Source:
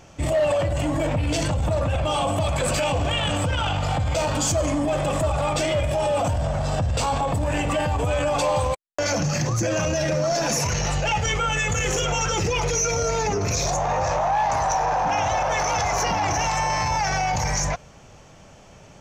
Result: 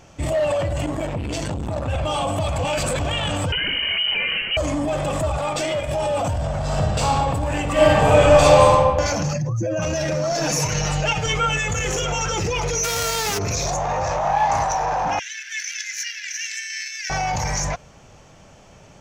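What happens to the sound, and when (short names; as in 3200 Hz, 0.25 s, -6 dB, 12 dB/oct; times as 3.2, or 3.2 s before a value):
0.86–1.88 core saturation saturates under 230 Hz
2.58–2.99 reverse
3.52–4.57 inverted band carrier 3000 Hz
5.38–5.88 bell 63 Hz -12 dB 1.9 oct
6.63–7.13 reverb throw, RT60 1.6 s, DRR -1 dB
7.72–8.72 reverb throw, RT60 1.4 s, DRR -9 dB
9.33–9.82 spectral contrast raised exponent 1.7
10.37–11.57 comb 6.5 ms
12.83–13.37 spectral whitening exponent 0.3
14.21–14.64 doubler 35 ms -3 dB
15.19–17.1 steep high-pass 1600 Hz 96 dB/oct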